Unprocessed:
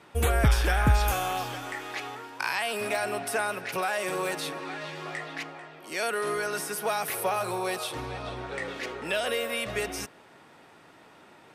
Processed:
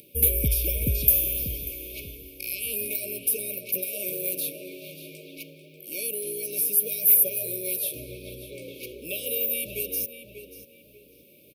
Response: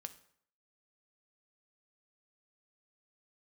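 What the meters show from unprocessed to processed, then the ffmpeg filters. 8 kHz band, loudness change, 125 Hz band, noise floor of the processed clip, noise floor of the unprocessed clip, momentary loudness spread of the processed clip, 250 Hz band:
+8.5 dB, +5.0 dB, -3.5 dB, -55 dBFS, -54 dBFS, 22 LU, -3.5 dB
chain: -filter_complex "[0:a]asplit=2[s0][s1];[s1]adelay=590,lowpass=f=3100:p=1,volume=0.376,asplit=2[s2][s3];[s3]adelay=590,lowpass=f=3100:p=1,volume=0.32,asplit=2[s4][s5];[s5]adelay=590,lowpass=f=3100:p=1,volume=0.32,asplit=2[s6][s7];[s7]adelay=590,lowpass=f=3100:p=1,volume=0.32[s8];[s0][s2][s4][s6][s8]amix=inputs=5:normalize=0,acompressor=mode=upward:threshold=0.00562:ratio=2.5,aexciter=amount=14.7:drive=8.1:freq=11000,afftfilt=real='re*(1-between(b*sr/4096,620,2200))':imag='im*(1-between(b*sr/4096,620,2200))':win_size=4096:overlap=0.75,volume=0.631"

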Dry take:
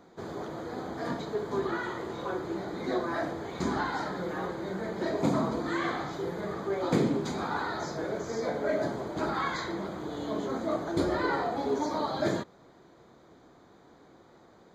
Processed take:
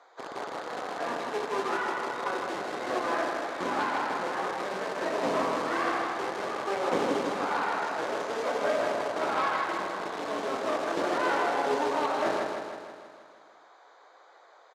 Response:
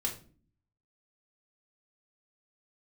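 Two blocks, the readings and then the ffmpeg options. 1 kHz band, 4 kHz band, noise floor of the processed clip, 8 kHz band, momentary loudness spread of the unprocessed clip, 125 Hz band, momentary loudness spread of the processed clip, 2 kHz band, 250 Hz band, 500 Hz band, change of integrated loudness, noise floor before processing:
+5.5 dB, +3.5 dB, -56 dBFS, +3.0 dB, 8 LU, -12.0 dB, 7 LU, +4.5 dB, -4.5 dB, +1.5 dB, +2.0 dB, -57 dBFS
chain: -filter_complex "[0:a]acrossover=split=590|1800[s0][s1][s2];[s0]acrusher=bits=3:dc=4:mix=0:aa=0.000001[s3];[s1]aeval=exprs='0.0841*(cos(1*acos(clip(val(0)/0.0841,-1,1)))-cos(1*PI/2))+0.0119*(cos(5*acos(clip(val(0)/0.0841,-1,1)))-cos(5*PI/2))+0.0119*(cos(6*acos(clip(val(0)/0.0841,-1,1)))-cos(6*PI/2))':c=same[s4];[s2]acompressor=threshold=0.00224:ratio=6[s5];[s3][s4][s5]amix=inputs=3:normalize=0,highpass=260,lowpass=7200,aecho=1:1:159|318|477|636|795|954|1113|1272:0.596|0.351|0.207|0.122|0.0722|0.0426|0.0251|0.0148,asplit=2[s6][s7];[1:a]atrim=start_sample=2205,asetrate=57330,aresample=44100[s8];[s7][s8]afir=irnorm=-1:irlink=0,volume=0.188[s9];[s6][s9]amix=inputs=2:normalize=0"

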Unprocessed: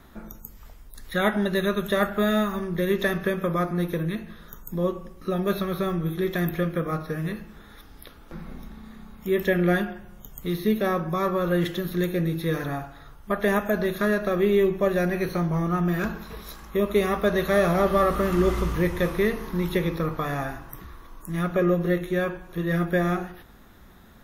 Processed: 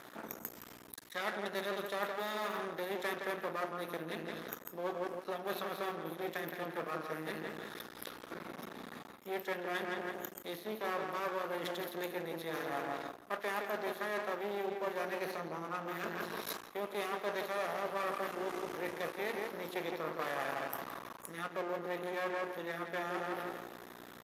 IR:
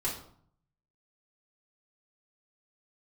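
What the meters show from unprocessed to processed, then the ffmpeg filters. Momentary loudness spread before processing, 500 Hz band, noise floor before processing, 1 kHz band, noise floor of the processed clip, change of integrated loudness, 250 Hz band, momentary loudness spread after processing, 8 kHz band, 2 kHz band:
18 LU, -13.5 dB, -49 dBFS, -8.0 dB, -53 dBFS, -14.0 dB, -19.0 dB, 9 LU, -7.0 dB, -9.5 dB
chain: -filter_complex "[0:a]acontrast=47,aeval=exprs='val(0)+0.00794*(sin(2*PI*60*n/s)+sin(2*PI*2*60*n/s)/2+sin(2*PI*3*60*n/s)/3+sin(2*PI*4*60*n/s)/4+sin(2*PI*5*60*n/s)/5)':c=same,asplit=2[s0][s1];[s1]adelay=167,lowpass=f=2500:p=1,volume=0.473,asplit=2[s2][s3];[s3]adelay=167,lowpass=f=2500:p=1,volume=0.42,asplit=2[s4][s5];[s5]adelay=167,lowpass=f=2500:p=1,volume=0.42,asplit=2[s6][s7];[s7]adelay=167,lowpass=f=2500:p=1,volume=0.42,asplit=2[s8][s9];[s9]adelay=167,lowpass=f=2500:p=1,volume=0.42[s10];[s0][s2][s4][s6][s8][s10]amix=inputs=6:normalize=0,areverse,acompressor=threshold=0.0398:ratio=10,areverse,aeval=exprs='max(val(0),0)':c=same,highpass=370,aresample=32000,aresample=44100"

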